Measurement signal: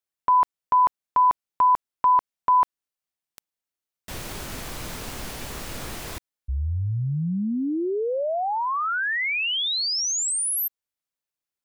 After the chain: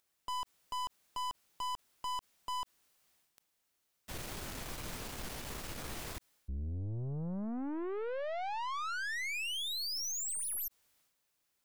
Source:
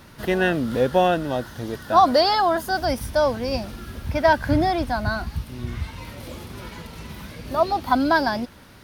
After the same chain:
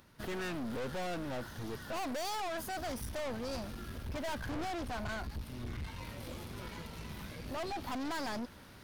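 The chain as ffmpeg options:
ffmpeg -i in.wav -af "agate=range=-18dB:threshold=-36dB:ratio=3:release=455:detection=rms,aeval=exprs='(tanh(35.5*val(0)+0.4)-tanh(0.4))/35.5':channel_layout=same,acompressor=mode=upward:threshold=-48dB:ratio=2.5:attack=1.9:release=22:knee=2.83:detection=peak,volume=-5.5dB" out.wav

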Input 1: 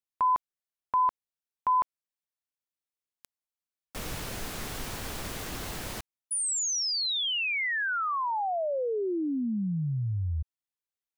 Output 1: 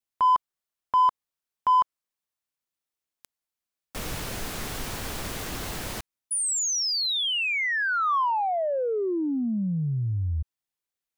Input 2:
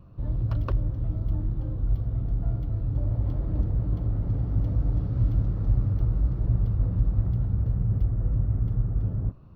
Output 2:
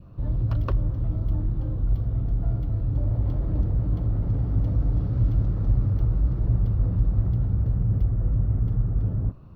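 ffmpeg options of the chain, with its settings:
ffmpeg -i in.wav -filter_complex "[0:a]adynamicequalizer=threshold=0.00794:dfrequency=1100:dqfactor=2.7:tfrequency=1100:tqfactor=2.7:attack=5:release=100:ratio=0.375:range=2:mode=boostabove:tftype=bell,asplit=2[link_01][link_02];[link_02]asoftclip=type=tanh:threshold=-26.5dB,volume=-6dB[link_03];[link_01][link_03]amix=inputs=2:normalize=0" out.wav

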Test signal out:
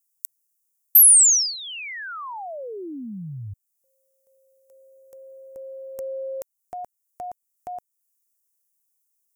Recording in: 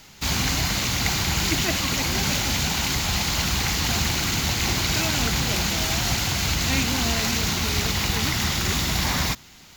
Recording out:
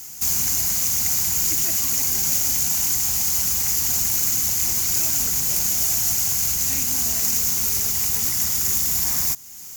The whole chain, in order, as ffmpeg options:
ffmpeg -i in.wav -af "acompressor=threshold=-41dB:ratio=1.5,aexciter=amount=14.4:drive=1.6:freq=5700,volume=-3.5dB" out.wav

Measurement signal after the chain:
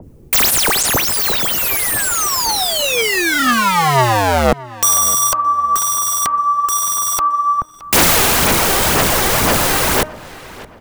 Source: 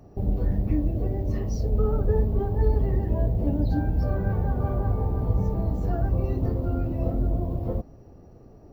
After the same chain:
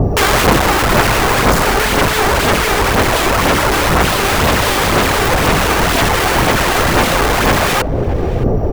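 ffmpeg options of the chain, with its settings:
ffmpeg -i in.wav -filter_complex "[0:a]bandreject=frequency=308.6:width_type=h:width=4,bandreject=frequency=617.2:width_type=h:width=4,bandreject=frequency=925.8:width_type=h:width=4,bandreject=frequency=1234.4:width_type=h:width=4,bandreject=frequency=1543:width_type=h:width=4,bandreject=frequency=1851.6:width_type=h:width=4,bandreject=frequency=2160.2:width_type=h:width=4,bandreject=frequency=2468.8:width_type=h:width=4,bandreject=frequency=2777.4:width_type=h:width=4,bandreject=frequency=3086:width_type=h:width=4,acrossover=split=260|470|1200[link_01][link_02][link_03][link_04];[link_01]acompressor=mode=upward:threshold=-38dB:ratio=2.5[link_05];[link_05][link_02][link_03][link_04]amix=inputs=4:normalize=0,equalizer=frequency=500:width_type=o:width=1:gain=7,equalizer=frequency=1000:width_type=o:width=1:gain=5,equalizer=frequency=4000:width_type=o:width=1:gain=-5,acompressor=threshold=-20dB:ratio=6,apsyclip=27dB,aeval=exprs='(mod(2*val(0)+1,2)-1)/2':channel_layout=same,aphaser=in_gain=1:out_gain=1:delay=2.6:decay=0.38:speed=2:type=sinusoidal,asplit=2[link_06][link_07];[link_07]adelay=619,lowpass=frequency=1600:poles=1,volume=-18dB,asplit=2[link_08][link_09];[link_09]adelay=619,lowpass=frequency=1600:poles=1,volume=0.43,asplit=2[link_10][link_11];[link_11]adelay=619,lowpass=frequency=1600:poles=1,volume=0.43,asplit=2[link_12][link_13];[link_13]adelay=619,lowpass=frequency=1600:poles=1,volume=0.43[link_14];[link_06][link_08][link_10][link_12][link_14]amix=inputs=5:normalize=0,adynamicequalizer=threshold=0.0501:dfrequency=1700:dqfactor=0.7:tfrequency=1700:tqfactor=0.7:attack=5:release=100:ratio=0.375:range=3.5:mode=cutabove:tftype=highshelf" out.wav

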